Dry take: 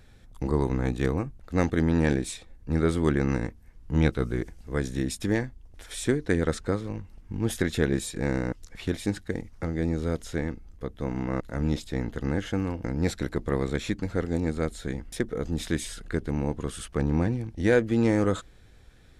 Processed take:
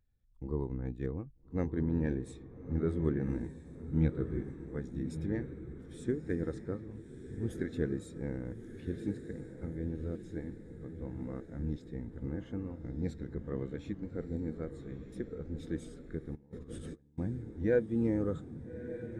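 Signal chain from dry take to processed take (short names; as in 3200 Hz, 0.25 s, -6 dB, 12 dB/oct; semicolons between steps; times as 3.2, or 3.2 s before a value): diffused feedback echo 1.274 s, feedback 59%, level -6 dB; 16.35–17.18 negative-ratio compressor -33 dBFS, ratio -0.5; spectral expander 1.5:1; gain -8 dB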